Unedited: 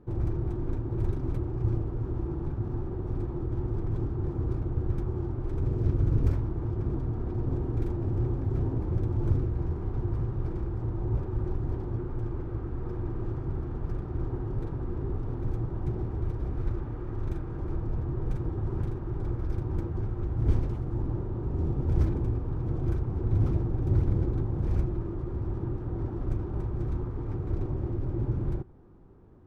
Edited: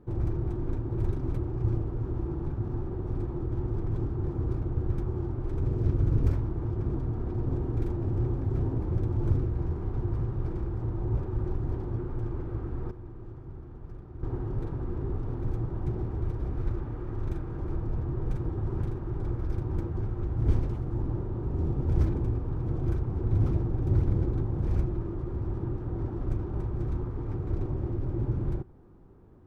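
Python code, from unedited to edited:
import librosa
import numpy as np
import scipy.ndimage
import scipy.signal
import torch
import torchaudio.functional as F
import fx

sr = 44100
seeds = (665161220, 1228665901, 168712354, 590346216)

y = fx.edit(x, sr, fx.clip_gain(start_s=12.91, length_s=1.32, db=-10.5), tone=tone)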